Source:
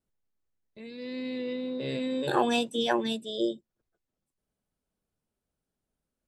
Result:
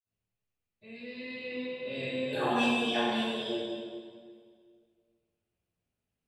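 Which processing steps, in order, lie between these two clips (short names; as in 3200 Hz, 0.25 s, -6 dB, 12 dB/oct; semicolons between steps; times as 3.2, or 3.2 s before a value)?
fifteen-band EQ 100 Hz +11 dB, 630 Hz +4 dB, 2500 Hz +12 dB; reverb RT60 1.9 s, pre-delay 46 ms, DRR -60 dB; gain -2 dB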